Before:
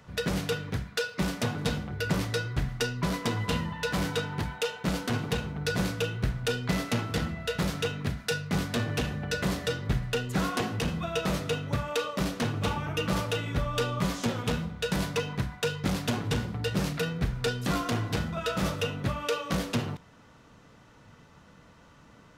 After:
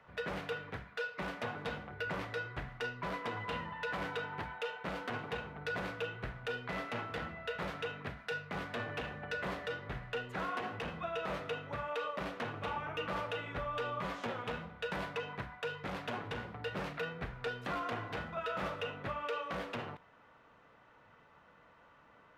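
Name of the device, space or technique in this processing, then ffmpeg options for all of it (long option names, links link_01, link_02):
DJ mixer with the lows and highs turned down: -filter_complex "[0:a]acrossover=split=440 2900:gain=0.224 1 0.1[link_01][link_02][link_03];[link_01][link_02][link_03]amix=inputs=3:normalize=0,alimiter=level_in=1.5dB:limit=-24dB:level=0:latency=1:release=45,volume=-1.5dB,volume=-2.5dB"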